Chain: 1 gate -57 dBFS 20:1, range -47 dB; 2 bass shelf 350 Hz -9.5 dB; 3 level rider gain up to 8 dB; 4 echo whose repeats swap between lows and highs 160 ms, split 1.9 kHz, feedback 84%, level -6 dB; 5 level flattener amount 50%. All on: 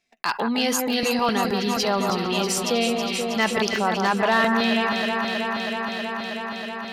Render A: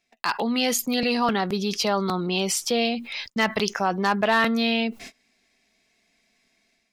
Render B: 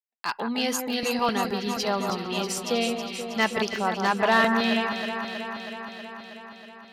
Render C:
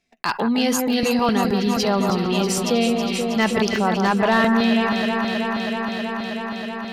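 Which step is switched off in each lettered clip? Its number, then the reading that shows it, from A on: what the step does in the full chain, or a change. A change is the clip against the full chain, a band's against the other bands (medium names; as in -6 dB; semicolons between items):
4, momentary loudness spread change -2 LU; 5, crest factor change +2.5 dB; 2, 125 Hz band +6.0 dB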